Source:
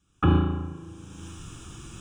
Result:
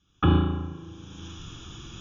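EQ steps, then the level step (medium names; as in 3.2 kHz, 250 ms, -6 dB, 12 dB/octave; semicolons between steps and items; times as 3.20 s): brick-wall FIR low-pass 7 kHz; peaking EQ 3.4 kHz +11 dB 0.24 oct; 0.0 dB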